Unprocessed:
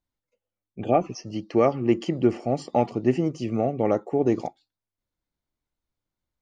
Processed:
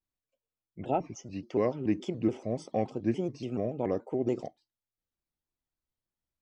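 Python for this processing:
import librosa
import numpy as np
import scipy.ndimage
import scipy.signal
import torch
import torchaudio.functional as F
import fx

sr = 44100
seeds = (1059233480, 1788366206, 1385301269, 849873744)

y = fx.dynamic_eq(x, sr, hz=1300.0, q=1.2, threshold_db=-38.0, ratio=4.0, max_db=-4)
y = fx.vibrato_shape(y, sr, shape='square', rate_hz=3.5, depth_cents=160.0)
y = y * librosa.db_to_amplitude(-7.5)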